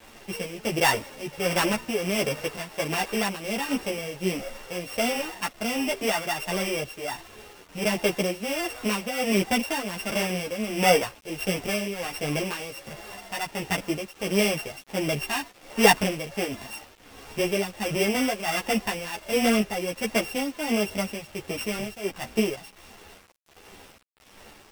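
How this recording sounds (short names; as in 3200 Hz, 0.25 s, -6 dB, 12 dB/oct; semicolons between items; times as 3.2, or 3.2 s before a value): a buzz of ramps at a fixed pitch in blocks of 16 samples; tremolo triangle 1.4 Hz, depth 75%; a quantiser's noise floor 8-bit, dither none; a shimmering, thickened sound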